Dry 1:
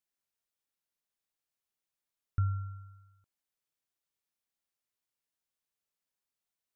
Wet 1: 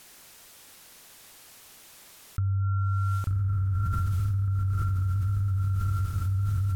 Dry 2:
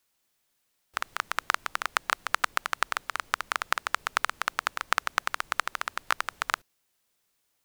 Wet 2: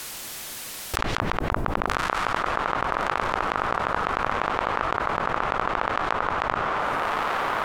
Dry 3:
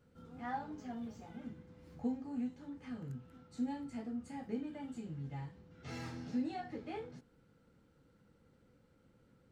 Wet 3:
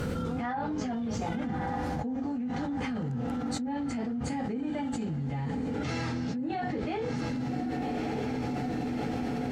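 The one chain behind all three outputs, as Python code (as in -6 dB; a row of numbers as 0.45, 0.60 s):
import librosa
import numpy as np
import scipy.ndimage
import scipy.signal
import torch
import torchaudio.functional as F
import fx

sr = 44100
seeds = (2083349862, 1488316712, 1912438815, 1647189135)

y = fx.env_lowpass_down(x, sr, base_hz=760.0, full_db=-29.5)
y = fx.echo_diffused(y, sr, ms=1206, feedback_pct=62, wet_db=-13.5)
y = fx.env_flatten(y, sr, amount_pct=100)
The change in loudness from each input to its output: +8.0, +4.5, +10.5 LU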